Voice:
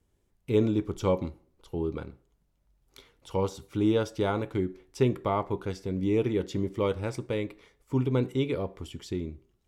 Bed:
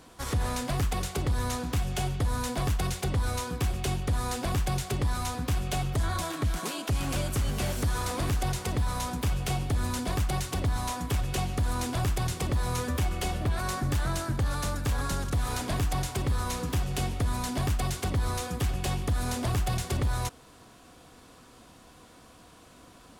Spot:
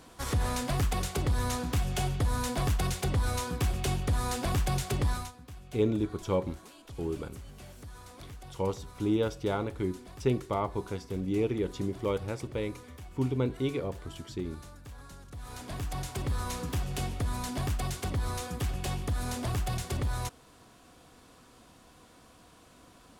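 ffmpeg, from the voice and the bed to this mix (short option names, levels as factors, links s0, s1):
-filter_complex "[0:a]adelay=5250,volume=0.708[s0];[1:a]volume=5.31,afade=t=out:st=5.1:d=0.22:silence=0.125893,afade=t=in:st=15.28:d=1.04:silence=0.177828[s1];[s0][s1]amix=inputs=2:normalize=0"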